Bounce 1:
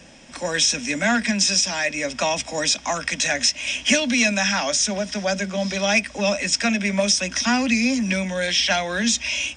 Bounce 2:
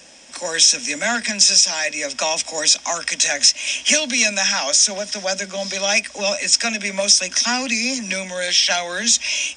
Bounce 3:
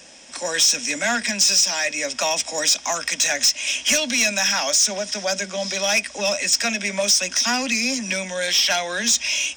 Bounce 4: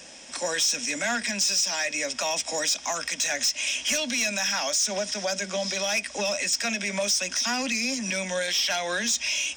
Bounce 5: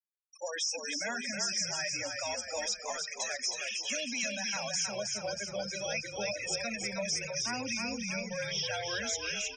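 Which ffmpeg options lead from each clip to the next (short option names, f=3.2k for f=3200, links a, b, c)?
-af "bass=f=250:g=-12,treble=f=4k:g=8"
-af "asoftclip=type=tanh:threshold=-11.5dB"
-af "alimiter=limit=-19dB:level=0:latency=1:release=122"
-filter_complex "[0:a]flanger=delay=3.6:depth=7.9:regen=-76:speed=0.5:shape=triangular,afftfilt=real='re*gte(hypot(re,im),0.0447)':imag='im*gte(hypot(re,im),0.0447)':win_size=1024:overlap=0.75,asplit=8[a][b][c][d][e][f][g][h];[b]adelay=316,afreqshift=-39,volume=-4.5dB[i];[c]adelay=632,afreqshift=-78,volume=-9.9dB[j];[d]adelay=948,afreqshift=-117,volume=-15.2dB[k];[e]adelay=1264,afreqshift=-156,volume=-20.6dB[l];[f]adelay=1580,afreqshift=-195,volume=-25.9dB[m];[g]adelay=1896,afreqshift=-234,volume=-31.3dB[n];[h]adelay=2212,afreqshift=-273,volume=-36.6dB[o];[a][i][j][k][l][m][n][o]amix=inputs=8:normalize=0,volume=-4dB"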